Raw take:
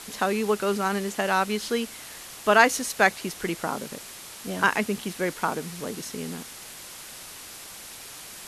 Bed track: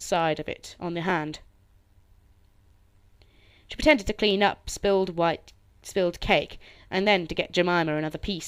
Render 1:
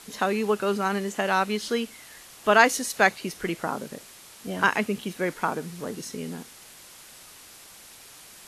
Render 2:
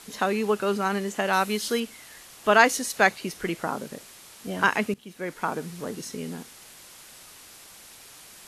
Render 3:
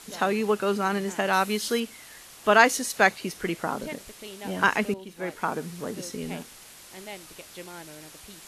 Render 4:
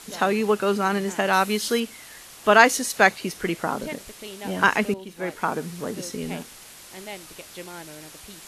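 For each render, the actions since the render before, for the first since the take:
noise reduction from a noise print 6 dB
0:01.33–0:01.80: high-shelf EQ 8,000 Hz +11.5 dB; 0:04.94–0:05.59: fade in, from −19 dB
mix in bed track −19.5 dB
level +3 dB

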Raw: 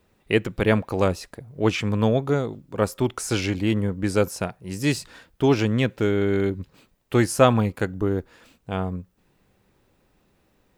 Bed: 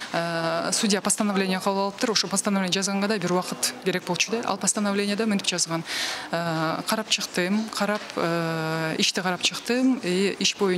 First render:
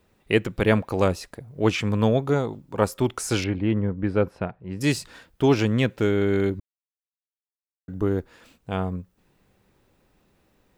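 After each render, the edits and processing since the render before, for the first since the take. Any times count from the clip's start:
0:02.36–0:02.85: parametric band 890 Hz +7 dB 0.41 octaves
0:03.44–0:04.81: high-frequency loss of the air 450 metres
0:06.60–0:07.88: silence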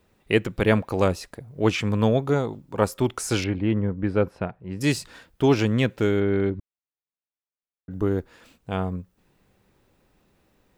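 0:06.20–0:07.91: high-frequency loss of the air 260 metres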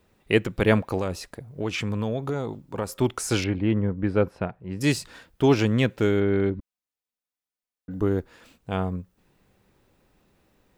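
0:00.98–0:02.89: downward compressor 4 to 1, threshold −24 dBFS
0:06.57–0:08.00: comb filter 4 ms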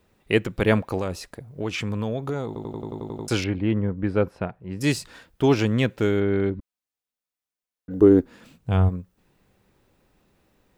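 0:02.47: stutter in place 0.09 s, 9 plays
0:07.90–0:08.88: parametric band 460 Hz → 86 Hz +14 dB 1 octave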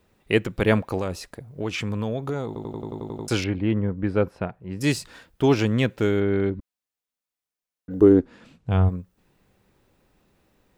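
0:08.12–0:08.88: high-frequency loss of the air 59 metres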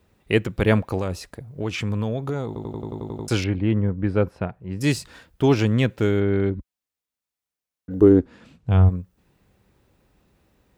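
high-pass filter 50 Hz
low-shelf EQ 82 Hz +11 dB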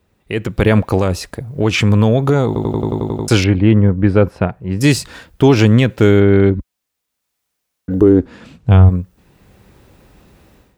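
brickwall limiter −12 dBFS, peak gain reduction 8 dB
automatic gain control gain up to 15 dB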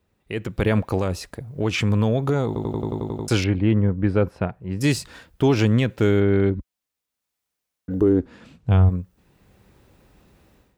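level −8 dB

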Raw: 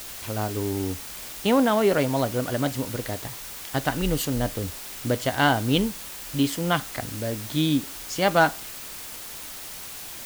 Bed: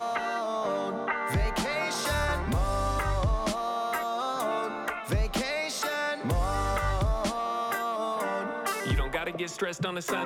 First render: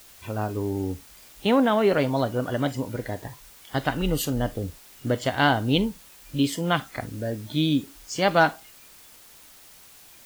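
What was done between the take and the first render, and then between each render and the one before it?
noise reduction from a noise print 12 dB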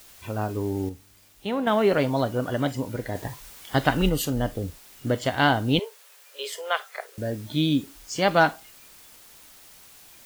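0:00.89–0:01.67: tuned comb filter 100 Hz, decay 1.8 s
0:03.15–0:04.09: clip gain +4 dB
0:05.79–0:07.18: Chebyshev high-pass with heavy ripple 400 Hz, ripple 3 dB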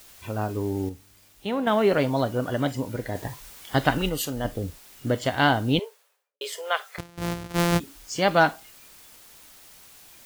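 0:03.98–0:04.45: low-shelf EQ 360 Hz −7.5 dB
0:05.65–0:06.41: fade out and dull
0:06.98–0:07.80: samples sorted by size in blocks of 256 samples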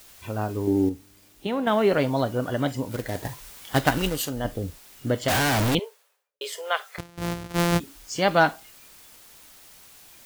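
0:00.67–0:01.47: parametric band 300 Hz +9 dB 1.1 octaves
0:02.91–0:04.29: log-companded quantiser 4 bits
0:05.28–0:05.75: sign of each sample alone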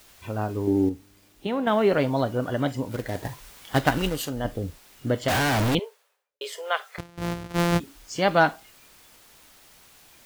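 high-shelf EQ 5,100 Hz −5.5 dB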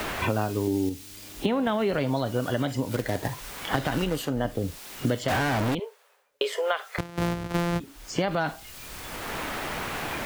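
brickwall limiter −17 dBFS, peak gain reduction 11 dB
multiband upward and downward compressor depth 100%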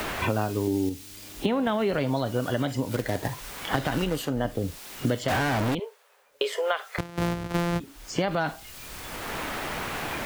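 upward compression, threshold −42 dBFS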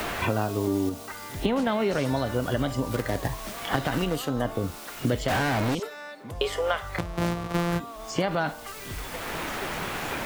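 mix in bed −10.5 dB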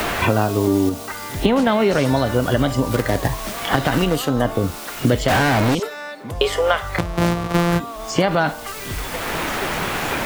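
level +8.5 dB
brickwall limiter −1 dBFS, peak gain reduction 1.5 dB

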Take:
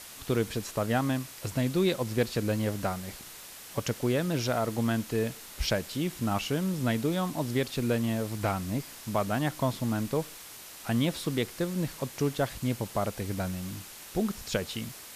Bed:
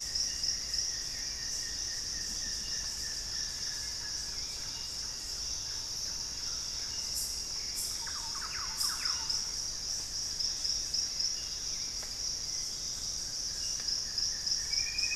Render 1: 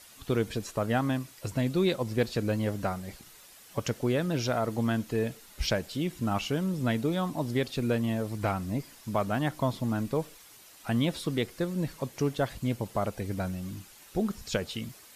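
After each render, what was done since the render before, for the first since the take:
broadband denoise 9 dB, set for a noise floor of −46 dBFS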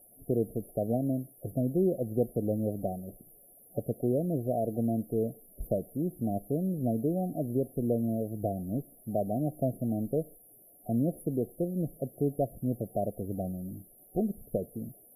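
parametric band 65 Hz −12.5 dB 0.88 octaves
brick-wall band-stop 750–10,000 Hz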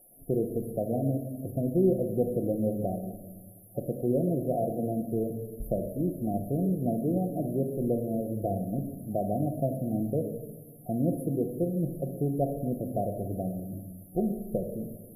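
rectangular room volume 820 cubic metres, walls mixed, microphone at 0.84 metres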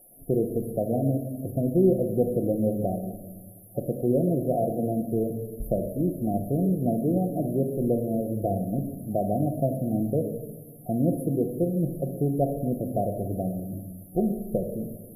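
level +3.5 dB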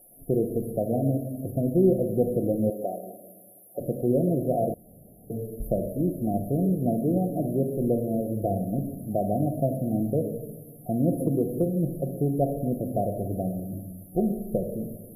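0:02.70–0:03.80: high-pass filter 390 Hz
0:04.74–0:05.30: fill with room tone
0:11.20–0:11.66: multiband upward and downward compressor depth 70%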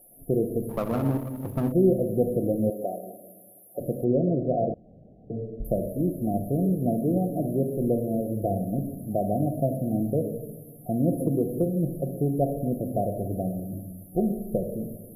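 0:00.69–0:01.72: lower of the sound and its delayed copy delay 0.4 ms
0:04.04–0:05.65: Butterworth low-pass 3,500 Hz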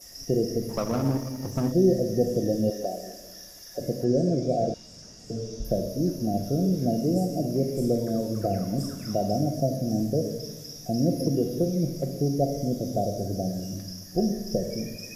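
mix in bed −10 dB

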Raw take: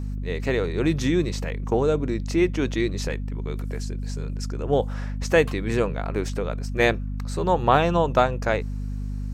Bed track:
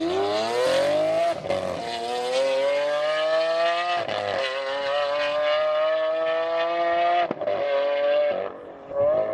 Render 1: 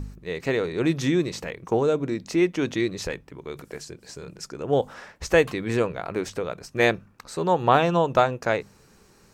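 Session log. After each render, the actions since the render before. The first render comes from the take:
hum removal 50 Hz, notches 5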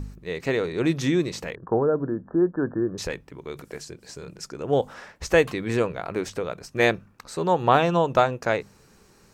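0:01.55–0:02.98: linear-phase brick-wall low-pass 1,800 Hz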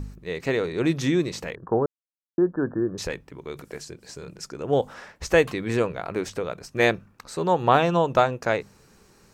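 0:01.86–0:02.38: silence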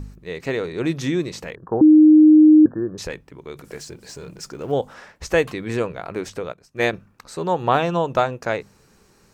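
0:01.81–0:02.66: beep over 308 Hz −6.5 dBFS
0:03.64–0:04.72: mu-law and A-law mismatch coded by mu
0:06.52–0:06.93: expander for the loud parts, over −41 dBFS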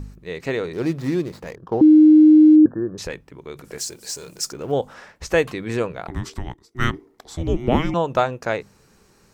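0:00.73–0:02.56: running median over 15 samples
0:03.78–0:04.53: bass and treble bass −7 dB, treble +13 dB
0:06.07–0:07.94: frequency shifter −490 Hz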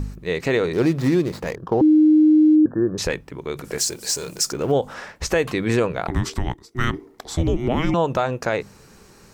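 in parallel at +2 dB: downward compressor, threshold −23 dBFS, peak gain reduction 13 dB
on the sum: brickwall limiter −10 dBFS, peak gain reduction 9 dB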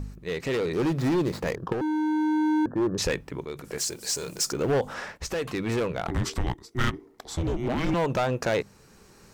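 gain into a clipping stage and back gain 18.5 dB
shaped tremolo saw up 0.58 Hz, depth 60%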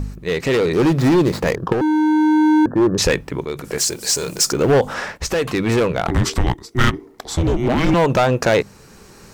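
level +10 dB

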